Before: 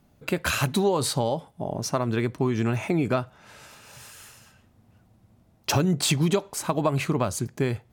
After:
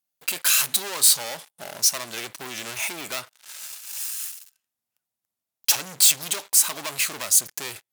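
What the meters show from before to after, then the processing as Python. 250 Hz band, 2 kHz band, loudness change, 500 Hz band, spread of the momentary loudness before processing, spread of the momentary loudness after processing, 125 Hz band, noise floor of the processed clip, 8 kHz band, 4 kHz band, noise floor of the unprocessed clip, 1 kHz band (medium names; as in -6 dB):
-19.0 dB, +2.0 dB, +5.0 dB, -13.0 dB, 11 LU, 17 LU, -23.0 dB, under -85 dBFS, +13.5 dB, +7.5 dB, -61 dBFS, -6.5 dB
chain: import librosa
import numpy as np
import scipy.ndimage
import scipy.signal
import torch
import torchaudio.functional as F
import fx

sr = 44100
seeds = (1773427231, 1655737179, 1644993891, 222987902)

y = fx.leveller(x, sr, passes=5)
y = np.diff(y, prepend=0.0)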